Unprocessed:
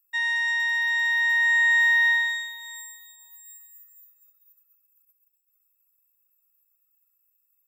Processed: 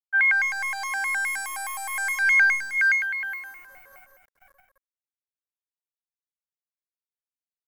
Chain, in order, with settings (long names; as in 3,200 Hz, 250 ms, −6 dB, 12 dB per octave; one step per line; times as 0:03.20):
high-pass filter 1,000 Hz 6 dB per octave
on a send: single-tap delay 608 ms −9.5 dB
on the sum: treble cut that deepens with the level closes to 2,800 Hz, closed at −23 dBFS
flat-topped bell 6,800 Hz −15 dB
centre clipping without the shift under −53.5 dBFS
automatic gain control gain up to 10.5 dB
wave folding −22 dBFS
high shelf with overshoot 2,500 Hz −10 dB, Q 3
loudspeakers that aren't time-aligned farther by 43 metres −9 dB, 61 metres −7 dB
pitch modulation by a square or saw wave square 4.8 Hz, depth 250 cents